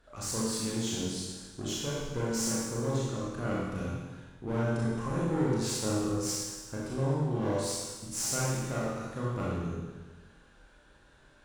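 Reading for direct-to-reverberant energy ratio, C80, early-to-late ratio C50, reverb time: -7.0 dB, 0.5 dB, -2.5 dB, 1.3 s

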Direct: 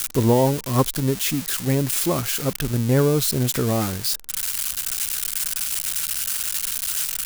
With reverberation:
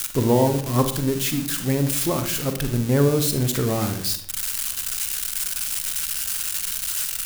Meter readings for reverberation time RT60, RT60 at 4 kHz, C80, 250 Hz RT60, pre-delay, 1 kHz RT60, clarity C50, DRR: 0.60 s, 0.45 s, 13.0 dB, 0.75 s, 38 ms, 0.55 s, 9.0 dB, 7.0 dB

